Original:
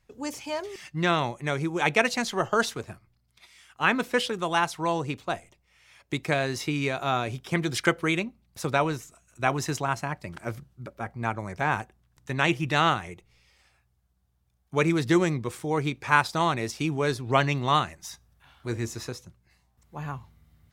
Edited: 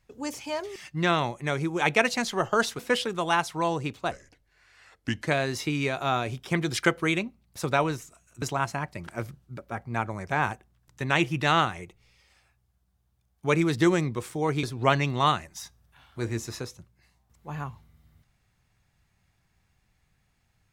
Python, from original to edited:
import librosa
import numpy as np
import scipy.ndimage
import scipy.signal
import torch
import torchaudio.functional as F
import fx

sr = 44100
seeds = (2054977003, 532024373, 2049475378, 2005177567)

y = fx.edit(x, sr, fx.cut(start_s=2.79, length_s=1.24),
    fx.speed_span(start_s=5.35, length_s=0.93, speed=0.8),
    fx.cut(start_s=9.43, length_s=0.28),
    fx.cut(start_s=15.92, length_s=1.19), tone=tone)